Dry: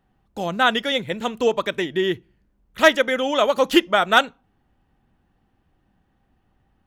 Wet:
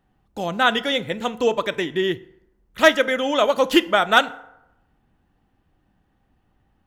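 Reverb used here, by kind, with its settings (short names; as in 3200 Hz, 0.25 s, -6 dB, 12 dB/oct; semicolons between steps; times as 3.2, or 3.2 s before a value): FDN reverb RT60 0.86 s, low-frequency decay 0.7×, high-frequency decay 0.55×, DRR 14.5 dB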